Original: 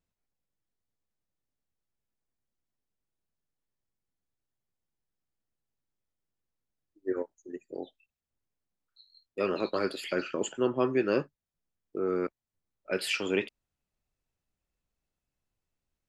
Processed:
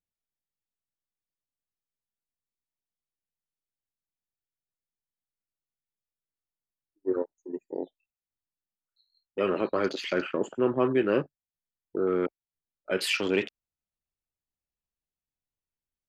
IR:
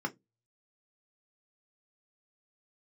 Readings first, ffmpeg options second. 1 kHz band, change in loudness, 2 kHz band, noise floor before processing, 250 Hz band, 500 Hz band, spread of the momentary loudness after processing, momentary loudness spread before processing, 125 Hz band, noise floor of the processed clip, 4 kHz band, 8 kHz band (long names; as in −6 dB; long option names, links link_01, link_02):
+2.5 dB, +2.5 dB, +2.5 dB, below −85 dBFS, +3.0 dB, +3.0 dB, 13 LU, 15 LU, +3.0 dB, below −85 dBFS, +3.0 dB, −0.5 dB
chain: -filter_complex "[0:a]afwtdn=0.00708,asplit=2[link_01][link_02];[link_02]alimiter=level_in=1dB:limit=-24dB:level=0:latency=1:release=64,volume=-1dB,volume=-2dB[link_03];[link_01][link_03]amix=inputs=2:normalize=0"